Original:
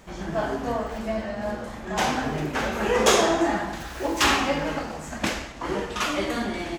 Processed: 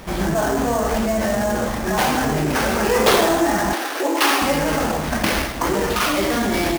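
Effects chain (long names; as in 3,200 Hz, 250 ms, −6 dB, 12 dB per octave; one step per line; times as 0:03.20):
in parallel at +1 dB: compressor whose output falls as the input rises −32 dBFS, ratio −1
on the sum: sample-rate reduction 7,500 Hz, jitter 20%
0:03.73–0:04.42: elliptic high-pass filter 270 Hz, stop band 40 dB
level +3 dB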